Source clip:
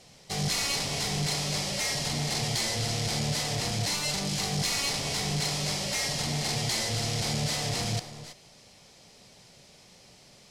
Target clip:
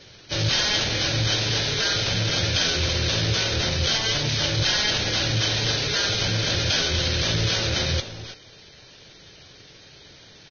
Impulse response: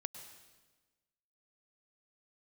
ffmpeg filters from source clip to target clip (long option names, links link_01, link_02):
-af "acontrast=57,asetrate=33038,aresample=44100,atempo=1.33484" -ar 16000 -c:a libvorbis -b:a 16k